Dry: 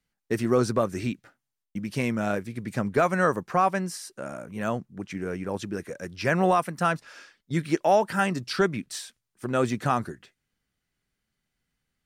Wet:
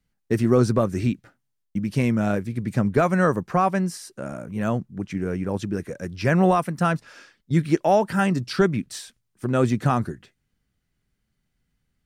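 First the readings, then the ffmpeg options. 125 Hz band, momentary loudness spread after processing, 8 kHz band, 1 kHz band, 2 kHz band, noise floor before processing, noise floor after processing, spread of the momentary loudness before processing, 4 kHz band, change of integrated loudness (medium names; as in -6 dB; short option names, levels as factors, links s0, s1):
+8.0 dB, 14 LU, 0.0 dB, +1.0 dB, +0.5 dB, -83 dBFS, -76 dBFS, 15 LU, 0.0 dB, +4.0 dB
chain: -af "lowshelf=f=290:g=10"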